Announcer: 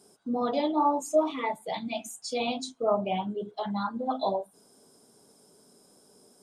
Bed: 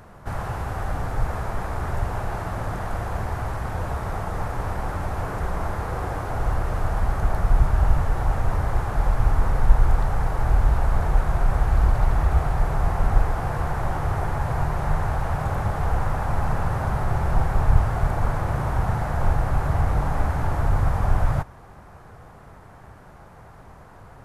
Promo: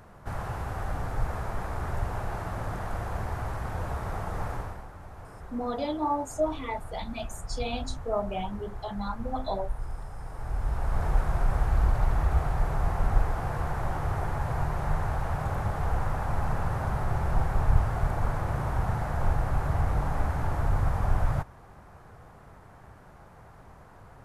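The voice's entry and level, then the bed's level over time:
5.25 s, −3.5 dB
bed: 0:04.54 −5 dB
0:04.89 −17.5 dB
0:10.17 −17.5 dB
0:11.06 −5 dB

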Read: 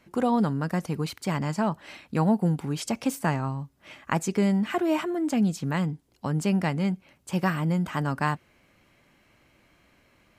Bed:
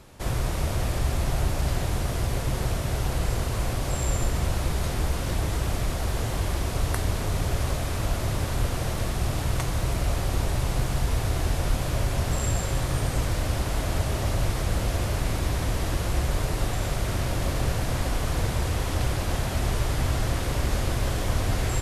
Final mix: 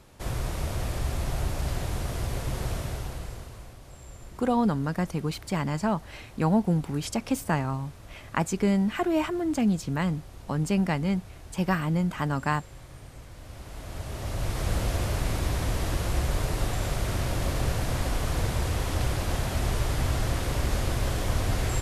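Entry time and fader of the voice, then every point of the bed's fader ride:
4.25 s, −0.5 dB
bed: 0:02.80 −4 dB
0:03.78 −20 dB
0:13.31 −20 dB
0:14.68 −1.5 dB

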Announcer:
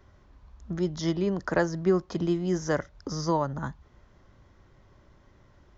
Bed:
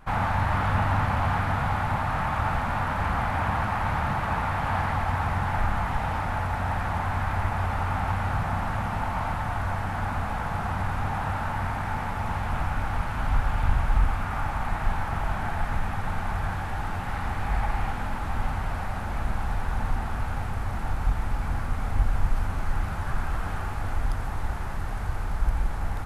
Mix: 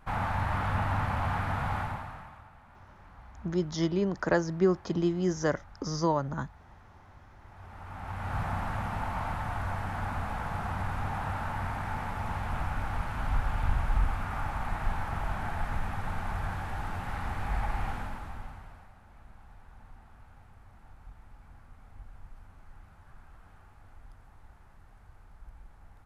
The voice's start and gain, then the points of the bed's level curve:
2.75 s, −1.0 dB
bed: 0:01.80 −5.5 dB
0:02.50 −28.5 dB
0:07.37 −28.5 dB
0:08.39 −5 dB
0:17.95 −5 dB
0:18.96 −25 dB

